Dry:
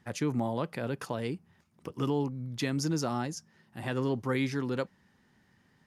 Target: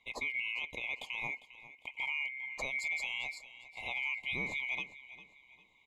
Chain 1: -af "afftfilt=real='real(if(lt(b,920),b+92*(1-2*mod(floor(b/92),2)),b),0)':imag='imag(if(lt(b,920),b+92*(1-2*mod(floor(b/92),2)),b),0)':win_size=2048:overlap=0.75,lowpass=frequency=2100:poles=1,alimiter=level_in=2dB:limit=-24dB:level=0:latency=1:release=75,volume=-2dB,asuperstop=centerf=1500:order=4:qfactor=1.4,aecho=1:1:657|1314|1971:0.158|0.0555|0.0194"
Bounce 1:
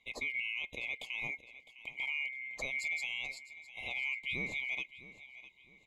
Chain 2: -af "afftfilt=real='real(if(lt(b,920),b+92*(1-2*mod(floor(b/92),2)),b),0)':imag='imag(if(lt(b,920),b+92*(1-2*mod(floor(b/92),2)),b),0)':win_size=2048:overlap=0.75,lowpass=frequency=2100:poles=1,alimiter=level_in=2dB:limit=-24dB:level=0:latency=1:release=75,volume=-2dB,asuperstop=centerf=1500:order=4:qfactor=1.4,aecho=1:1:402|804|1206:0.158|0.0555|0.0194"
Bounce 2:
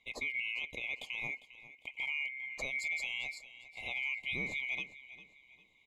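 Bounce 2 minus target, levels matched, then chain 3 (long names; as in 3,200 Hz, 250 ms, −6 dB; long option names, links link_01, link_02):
1,000 Hz band −6.0 dB
-af "afftfilt=real='real(if(lt(b,920),b+92*(1-2*mod(floor(b/92),2)),b),0)':imag='imag(if(lt(b,920),b+92*(1-2*mod(floor(b/92),2)),b),0)':win_size=2048:overlap=0.75,lowpass=frequency=2100:poles=1,alimiter=level_in=2dB:limit=-24dB:level=0:latency=1:release=75,volume=-2dB,asuperstop=centerf=1500:order=4:qfactor=1.4,equalizer=frequency=950:width_type=o:width=0.59:gain=9.5,aecho=1:1:402|804|1206:0.158|0.0555|0.0194"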